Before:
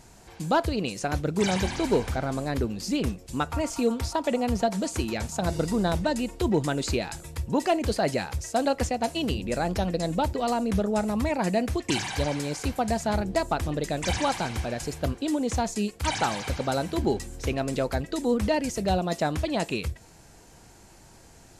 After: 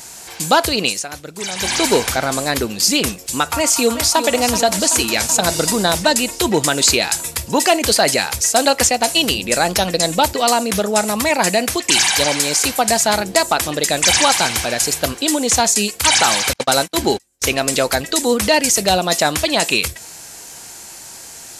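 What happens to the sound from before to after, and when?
0.86–1.75 dip -13 dB, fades 0.19 s
3.5–4.21 echo throw 0.38 s, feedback 75%, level -10 dB
10.37–13.89 low shelf 66 Hz -11 dB
16.53–17.42 gate -30 dBFS, range -38 dB
whole clip: tilt +3.5 dB/oct; maximiser +13.5 dB; gain -1 dB

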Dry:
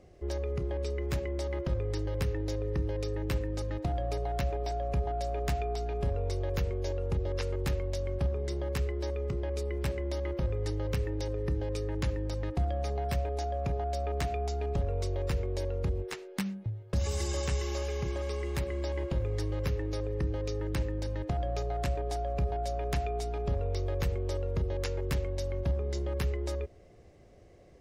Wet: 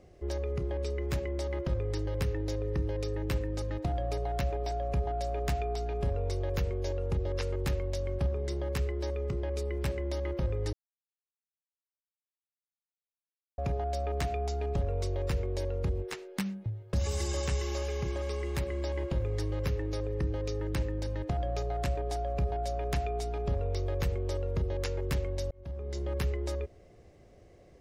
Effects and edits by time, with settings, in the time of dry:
10.73–13.58 mute
25.51–26.11 fade in

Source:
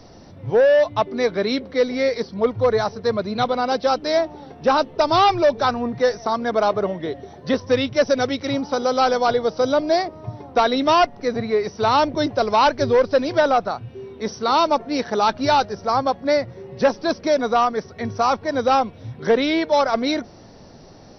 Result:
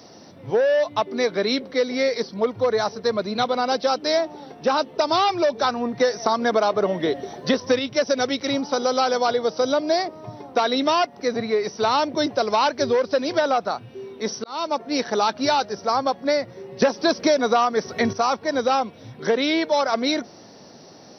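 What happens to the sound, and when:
6–7.79 gain +5.5 dB
14.44–14.97 fade in
16.82–18.13 gain +9.5 dB
whole clip: HPF 180 Hz 12 dB/oct; high shelf 5300 Hz +9 dB; compressor, threshold -16 dBFS

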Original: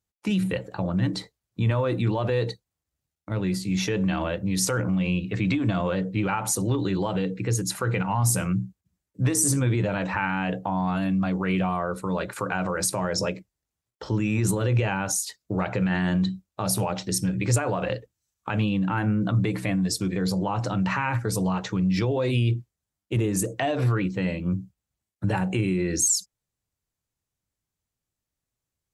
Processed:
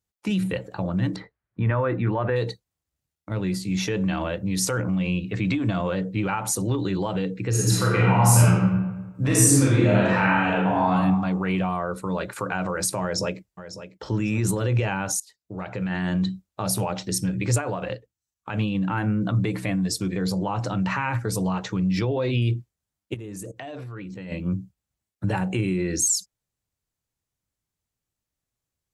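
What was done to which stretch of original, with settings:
1.16–2.36 synth low-pass 1700 Hz, resonance Q 2
7.49–10.92 reverb throw, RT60 1.2 s, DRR -5.5 dB
13.02–14.05 echo throw 0.55 s, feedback 25%, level -12.5 dB
15.2–16.24 fade in, from -21 dB
17.61–18.75 upward expander, over -37 dBFS
22.01–22.42 LPF 5500 Hz 24 dB/oct
23.14–24.32 level quantiser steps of 18 dB

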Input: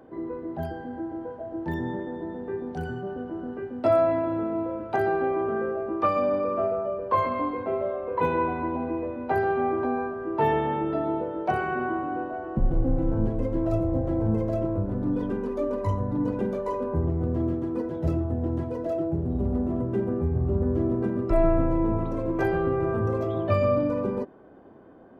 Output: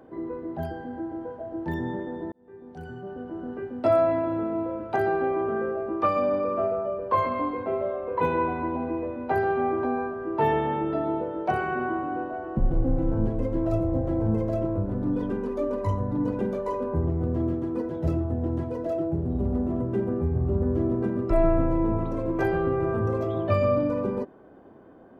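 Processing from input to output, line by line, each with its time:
2.32–3.54 fade in

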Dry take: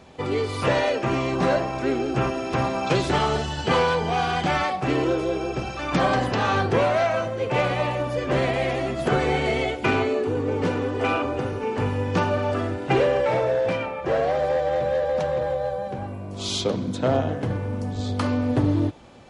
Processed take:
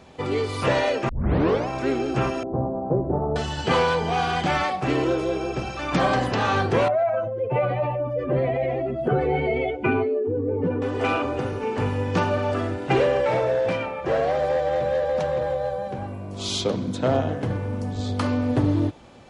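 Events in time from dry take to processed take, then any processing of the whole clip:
1.09 tape start 0.59 s
2.43–3.36 inverse Chebyshev low-pass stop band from 4300 Hz, stop band 80 dB
6.88–10.82 spectral contrast raised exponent 1.8

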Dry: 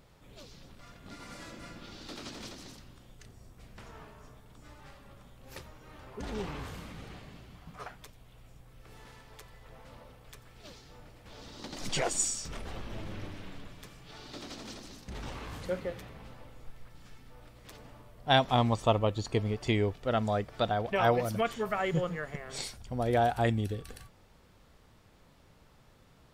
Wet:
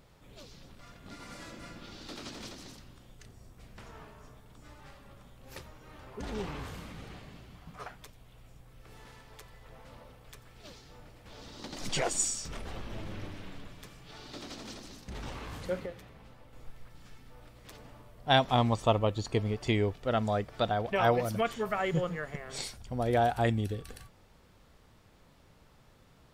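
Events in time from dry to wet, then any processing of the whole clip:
15.86–16.53 gain -5 dB

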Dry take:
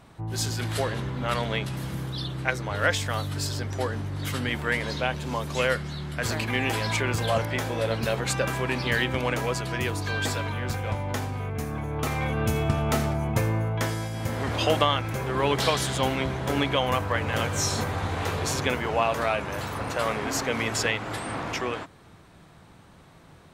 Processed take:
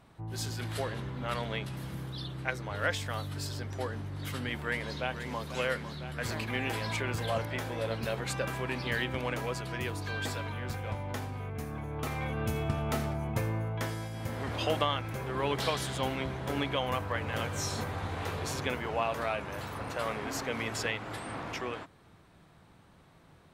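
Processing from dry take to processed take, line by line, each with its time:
4.57–5.45 echo throw 0.5 s, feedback 80%, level -10 dB
whole clip: bell 6800 Hz -3 dB 0.77 oct; gain -7 dB

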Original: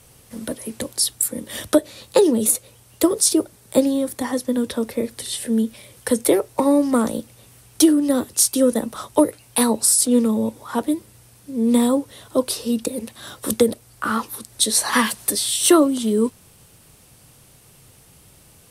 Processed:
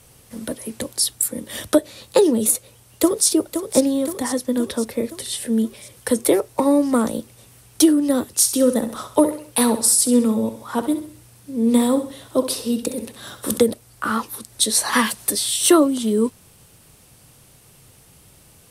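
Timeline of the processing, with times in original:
2.51–3.28 echo throw 0.52 s, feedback 60%, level -8.5 dB
8.4–13.59 feedback echo 66 ms, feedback 41%, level -11 dB

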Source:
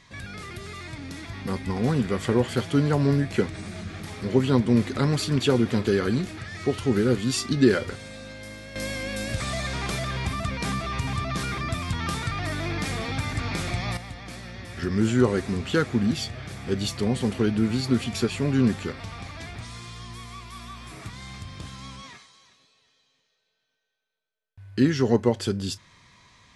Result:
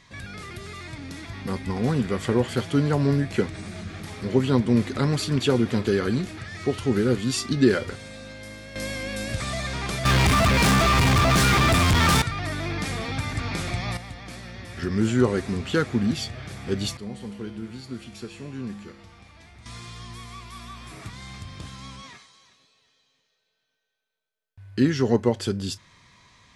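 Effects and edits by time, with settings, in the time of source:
10.05–12.22 sample leveller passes 5
16.97–19.66 resonator 68 Hz, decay 1.2 s, harmonics odd, mix 80%

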